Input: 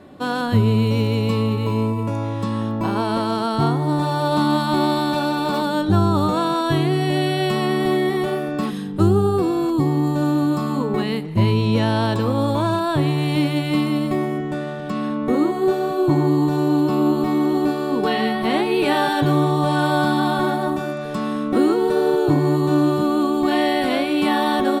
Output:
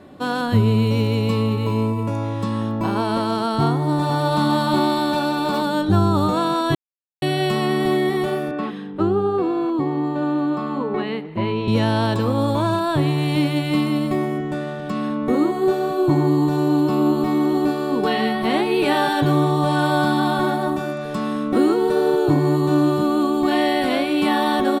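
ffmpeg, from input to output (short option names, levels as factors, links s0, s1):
-filter_complex "[0:a]asplit=2[s0][s1];[s1]afade=t=in:st=3.7:d=0.01,afade=t=out:st=4.4:d=0.01,aecho=0:1:390|780|1170|1560|1950:0.446684|0.201008|0.0904534|0.040704|0.0183168[s2];[s0][s2]amix=inputs=2:normalize=0,asettb=1/sr,asplit=3[s3][s4][s5];[s3]atrim=end=8.514[s6];[s4]atrim=start=8.51:end=11.68,asetpts=PTS-STARTPTS,afade=t=in:d=0.004:c=qsin,afade=t=out:st=3.166:d=0.004:c=qsin,acrossover=split=230 3500:gain=0.251 1 0.0891[s7][s8][s9];[s7][s8][s9]amix=inputs=3:normalize=0[s10];[s5]atrim=start=11.676[s11];[s6][s10]acrossfade=d=0.004:c1=hsin:c2=qsin[s12];[s12][s11]acrossfade=d=0.004:c1=qsin:c2=hsin,asplit=3[s13][s14][s15];[s13]atrim=end=6.75,asetpts=PTS-STARTPTS,afade=t=out:st=6.746:d=0.004:c=hsin[s16];[s14]atrim=start=6.75:end=7.22,asetpts=PTS-STARTPTS,volume=0[s17];[s15]atrim=start=7.22,asetpts=PTS-STARTPTS,afade=t=in:d=0.004:c=hsin[s18];[s16][s17][s18]concat=n=3:v=0:a=1"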